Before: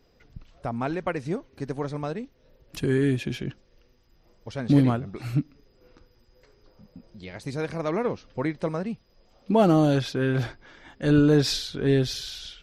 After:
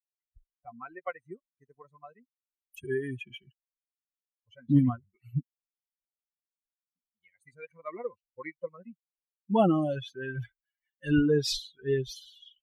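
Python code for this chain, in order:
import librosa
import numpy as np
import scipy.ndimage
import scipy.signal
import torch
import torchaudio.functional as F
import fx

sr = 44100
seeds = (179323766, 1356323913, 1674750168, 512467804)

y = fx.bin_expand(x, sr, power=3.0)
y = fx.high_shelf(y, sr, hz=2700.0, db=10.0, at=(10.42, 11.26))
y = fx.noise_reduce_blind(y, sr, reduce_db=14)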